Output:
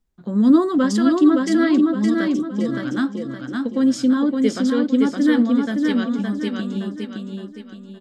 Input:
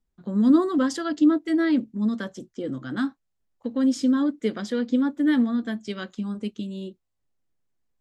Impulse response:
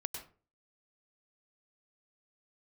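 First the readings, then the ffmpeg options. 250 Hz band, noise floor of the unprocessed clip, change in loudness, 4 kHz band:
+5.5 dB, −77 dBFS, +5.5 dB, +6.0 dB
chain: -af "aecho=1:1:566|1132|1698|2264|2830:0.668|0.274|0.112|0.0461|0.0189,volume=4dB"

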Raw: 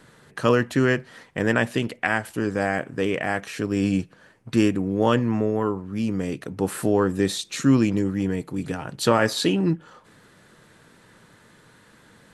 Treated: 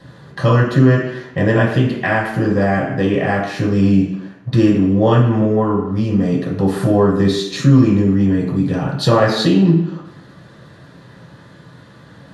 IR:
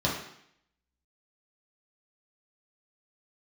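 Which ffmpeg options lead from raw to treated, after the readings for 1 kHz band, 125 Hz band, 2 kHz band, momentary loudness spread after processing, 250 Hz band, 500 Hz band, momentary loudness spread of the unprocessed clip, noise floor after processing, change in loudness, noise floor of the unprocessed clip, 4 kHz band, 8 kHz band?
+6.5 dB, +13.0 dB, +4.0 dB, 7 LU, +8.5 dB, +6.5 dB, 8 LU, −43 dBFS, +8.0 dB, −55 dBFS, +5.0 dB, can't be measured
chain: -filter_complex "[0:a]equalizer=frequency=670:width=1.5:gain=2[link_01];[1:a]atrim=start_sample=2205[link_02];[link_01][link_02]afir=irnorm=-1:irlink=0,acompressor=threshold=-12dB:ratio=1.5,volume=-3.5dB"

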